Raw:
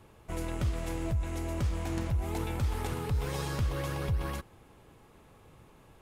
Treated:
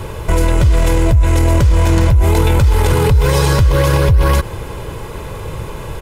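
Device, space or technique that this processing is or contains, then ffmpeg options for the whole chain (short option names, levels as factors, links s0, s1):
loud club master: -af "lowshelf=f=180:g=3.5,aecho=1:1:2:0.5,acompressor=threshold=0.0447:ratio=3,asoftclip=type=hard:threshold=0.075,alimiter=level_in=37.6:limit=0.891:release=50:level=0:latency=1,volume=0.668"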